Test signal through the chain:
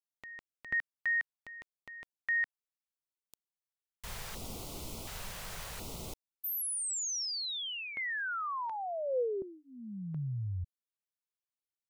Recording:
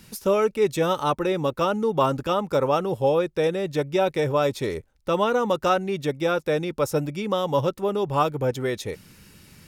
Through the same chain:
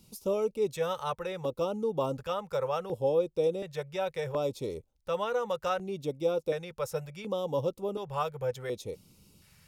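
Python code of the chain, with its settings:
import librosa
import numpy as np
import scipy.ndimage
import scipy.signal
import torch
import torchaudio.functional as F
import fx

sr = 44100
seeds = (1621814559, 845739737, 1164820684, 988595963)

y = fx.dynamic_eq(x, sr, hz=500.0, q=5.5, threshold_db=-39.0, ratio=4.0, max_db=7)
y = fx.filter_lfo_notch(y, sr, shape='square', hz=0.69, low_hz=290.0, high_hz=1700.0, q=0.73)
y = y * 10.0 ** (-9.0 / 20.0)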